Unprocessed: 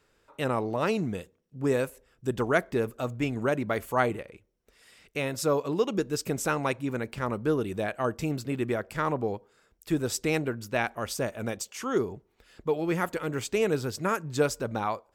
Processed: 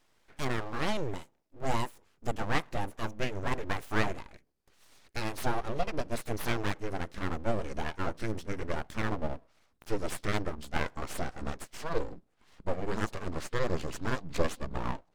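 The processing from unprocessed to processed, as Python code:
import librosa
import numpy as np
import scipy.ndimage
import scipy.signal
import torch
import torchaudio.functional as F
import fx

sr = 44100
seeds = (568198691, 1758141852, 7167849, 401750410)

y = fx.pitch_glide(x, sr, semitones=-10.5, runs='starting unshifted')
y = np.abs(y)
y = fx.doppler_dist(y, sr, depth_ms=0.17)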